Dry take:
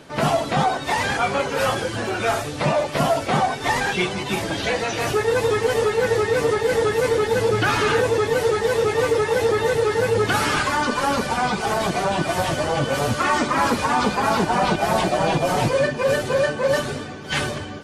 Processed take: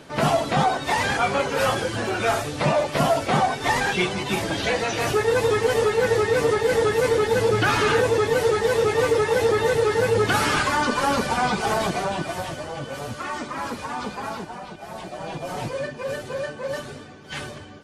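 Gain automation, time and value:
11.75 s -0.5 dB
12.67 s -10.5 dB
14.26 s -10.5 dB
14.69 s -19 dB
15.58 s -9.5 dB

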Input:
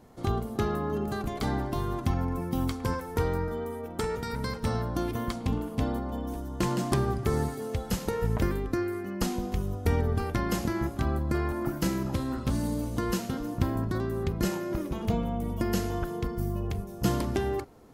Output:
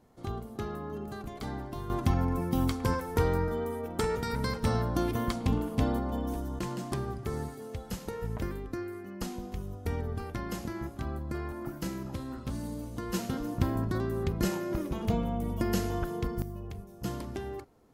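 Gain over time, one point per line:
-8 dB
from 1.9 s +1 dB
from 6.59 s -7.5 dB
from 13.14 s -1 dB
from 16.42 s -9 dB

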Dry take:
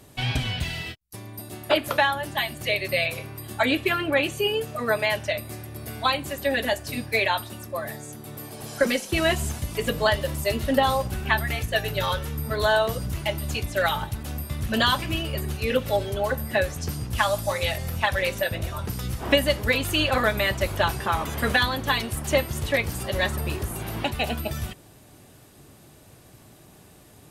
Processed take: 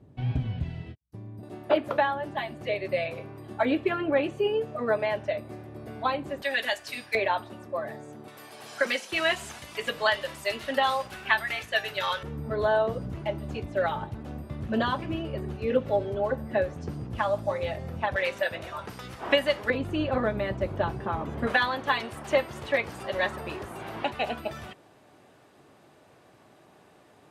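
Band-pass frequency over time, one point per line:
band-pass, Q 0.55
140 Hz
from 1.43 s 420 Hz
from 6.42 s 2300 Hz
from 7.15 s 540 Hz
from 8.28 s 1800 Hz
from 12.23 s 360 Hz
from 18.16 s 1100 Hz
from 19.7 s 270 Hz
from 21.47 s 900 Hz

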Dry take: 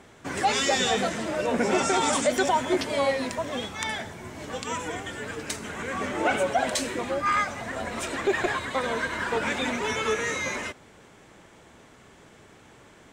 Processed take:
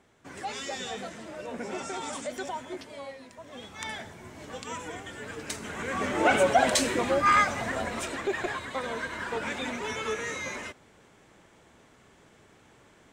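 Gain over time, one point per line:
2.51 s -12 dB
3.28 s -19 dB
3.85 s -6 dB
5.09 s -6 dB
6.45 s +3 dB
7.64 s +3 dB
8.3 s -5.5 dB

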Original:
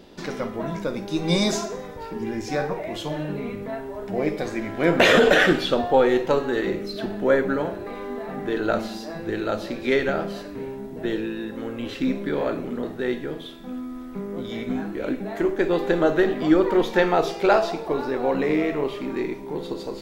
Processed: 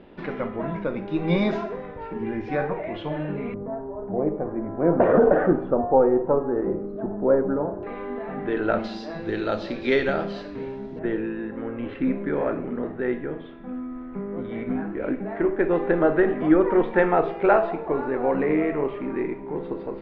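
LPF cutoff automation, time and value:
LPF 24 dB/oct
2700 Hz
from 3.54 s 1100 Hz
from 7.83 s 2800 Hz
from 8.84 s 4800 Hz
from 10.99 s 2200 Hz

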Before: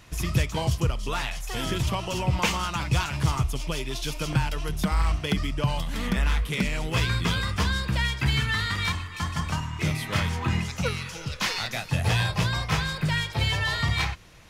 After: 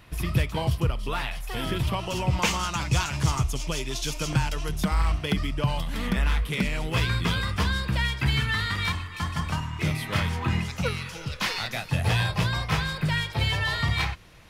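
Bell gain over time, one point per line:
bell 6600 Hz 0.7 oct
1.85 s -11.5 dB
2.1 s -2.5 dB
2.69 s +5.5 dB
4.5 s +5.5 dB
5.13 s -4.5 dB

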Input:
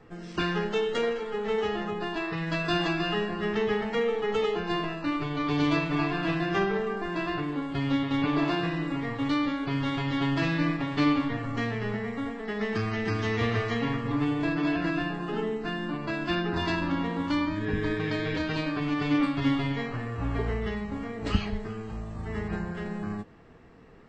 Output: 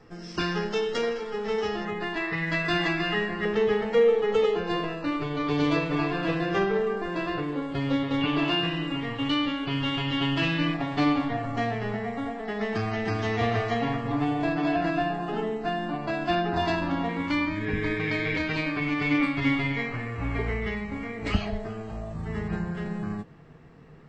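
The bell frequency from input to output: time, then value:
bell +13.5 dB 0.26 oct
5300 Hz
from 1.85 s 2000 Hz
from 3.45 s 500 Hz
from 8.21 s 2900 Hz
from 10.74 s 720 Hz
from 17.09 s 2200 Hz
from 21.34 s 660 Hz
from 22.13 s 150 Hz

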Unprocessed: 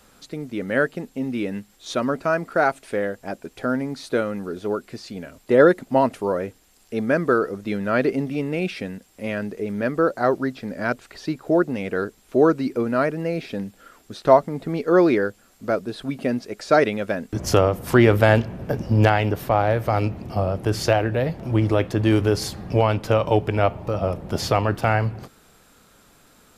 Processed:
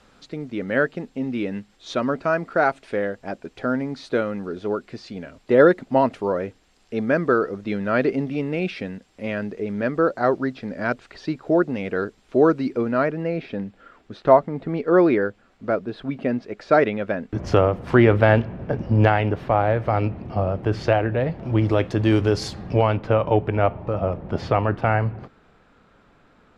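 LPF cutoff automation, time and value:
12.65 s 4700 Hz
13.42 s 2800 Hz
21.27 s 2800 Hz
21.76 s 6100 Hz
22.54 s 6100 Hz
23.05 s 2300 Hz

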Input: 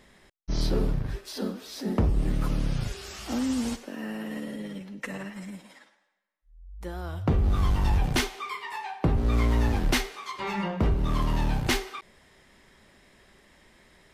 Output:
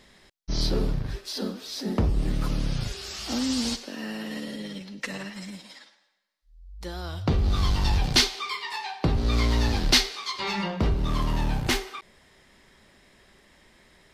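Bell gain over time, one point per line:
bell 4500 Hz 1.1 oct
3.01 s +7 dB
3.6 s +14.5 dB
10.49 s +14.5 dB
11.41 s +2.5 dB

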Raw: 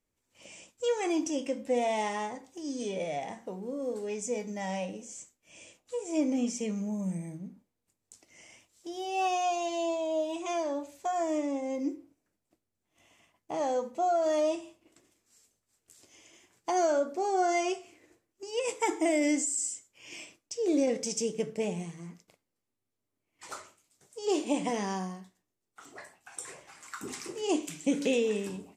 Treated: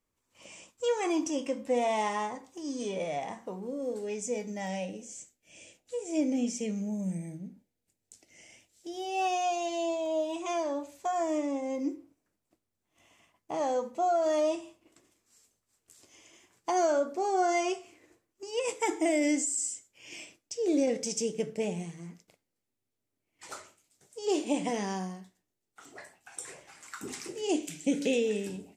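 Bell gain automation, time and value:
bell 1100 Hz 0.42 oct
+7 dB
from 3.67 s -5 dB
from 4.67 s -13 dB
from 8.94 s -4 dB
from 10.06 s +2.5 dB
from 18.73 s -4.5 dB
from 27.29 s -14.5 dB

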